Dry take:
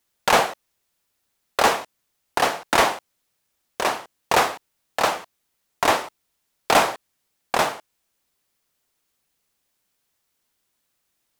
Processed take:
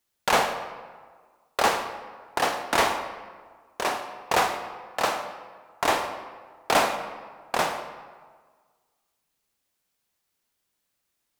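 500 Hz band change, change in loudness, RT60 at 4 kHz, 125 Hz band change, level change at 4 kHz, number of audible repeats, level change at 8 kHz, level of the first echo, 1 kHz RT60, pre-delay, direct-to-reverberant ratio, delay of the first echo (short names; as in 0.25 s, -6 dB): -4.0 dB, -4.5 dB, 0.95 s, -3.5 dB, -4.0 dB, none, -4.0 dB, none, 1.6 s, 30 ms, 6.5 dB, none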